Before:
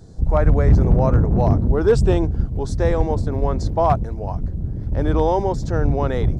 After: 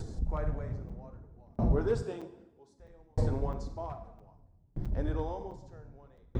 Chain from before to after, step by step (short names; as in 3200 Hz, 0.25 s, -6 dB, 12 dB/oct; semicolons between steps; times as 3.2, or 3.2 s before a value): reverb RT60 1.3 s, pre-delay 28 ms, DRR 6 dB; flange 0.77 Hz, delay 2 ms, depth 6.7 ms, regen -40%; upward compressor, threshold -24 dBFS; 2.02–2.8 HPF 240 Hz 12 dB/oct; crackling interface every 0.66 s, samples 256, zero, from 0.89; dB-ramp tremolo decaying 0.63 Hz, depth 37 dB; gain -3.5 dB